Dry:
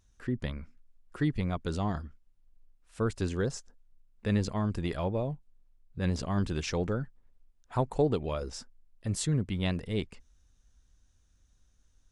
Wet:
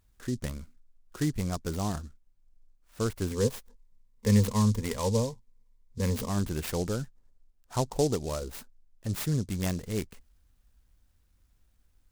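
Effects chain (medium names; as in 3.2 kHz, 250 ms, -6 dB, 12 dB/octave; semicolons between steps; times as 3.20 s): 3.30–6.29 s: rippled EQ curve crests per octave 0.93, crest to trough 15 dB; delay time shaken by noise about 5.7 kHz, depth 0.072 ms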